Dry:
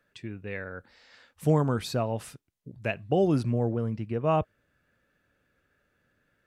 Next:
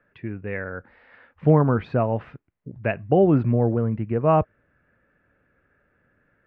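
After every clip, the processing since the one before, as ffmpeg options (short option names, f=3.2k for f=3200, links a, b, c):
-af "lowpass=f=2.2k:w=0.5412,lowpass=f=2.2k:w=1.3066,volume=6.5dB"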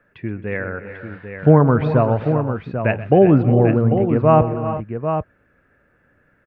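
-af "aecho=1:1:127|267|359|393|794:0.15|0.112|0.224|0.178|0.398,volume=5dB"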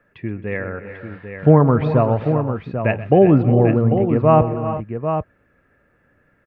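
-af "bandreject=f=1.5k:w=11"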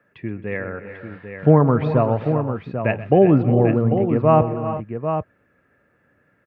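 -af "highpass=89,volume=-1.5dB"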